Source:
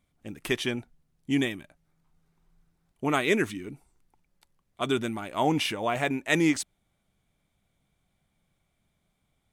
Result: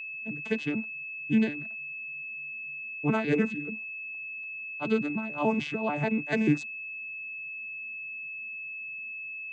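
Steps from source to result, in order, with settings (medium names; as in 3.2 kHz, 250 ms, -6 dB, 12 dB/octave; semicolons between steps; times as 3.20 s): vocoder on a broken chord bare fifth, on D3, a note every 147 ms; whistle 2.6 kHz -36 dBFS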